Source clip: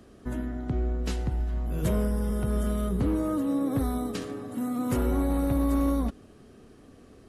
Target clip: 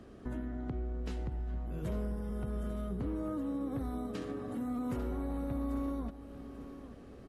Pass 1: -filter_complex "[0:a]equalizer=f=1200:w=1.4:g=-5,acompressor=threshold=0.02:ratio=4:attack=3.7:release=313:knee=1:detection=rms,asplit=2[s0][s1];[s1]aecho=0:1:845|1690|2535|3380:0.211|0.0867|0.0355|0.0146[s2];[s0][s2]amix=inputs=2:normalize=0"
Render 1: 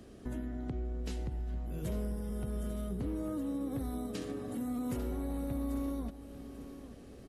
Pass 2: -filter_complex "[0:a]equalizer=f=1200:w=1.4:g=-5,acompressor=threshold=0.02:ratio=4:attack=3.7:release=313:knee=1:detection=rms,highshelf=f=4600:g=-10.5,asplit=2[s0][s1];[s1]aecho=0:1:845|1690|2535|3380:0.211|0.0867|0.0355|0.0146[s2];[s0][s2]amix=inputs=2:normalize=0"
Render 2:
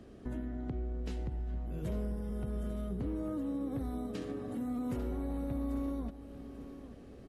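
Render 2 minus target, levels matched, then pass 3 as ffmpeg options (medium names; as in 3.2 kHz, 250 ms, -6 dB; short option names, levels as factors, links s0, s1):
1 kHz band -3.0 dB
-filter_complex "[0:a]acompressor=threshold=0.02:ratio=4:attack=3.7:release=313:knee=1:detection=rms,highshelf=f=4600:g=-10.5,asplit=2[s0][s1];[s1]aecho=0:1:845|1690|2535|3380:0.211|0.0867|0.0355|0.0146[s2];[s0][s2]amix=inputs=2:normalize=0"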